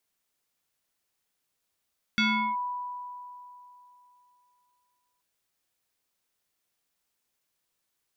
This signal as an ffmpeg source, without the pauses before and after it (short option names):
-f lavfi -i "aevalsrc='0.1*pow(10,-3*t/3.09)*sin(2*PI*986*t+2.4*clip(1-t/0.38,0,1)*sin(2*PI*1.22*986*t))':d=3.03:s=44100"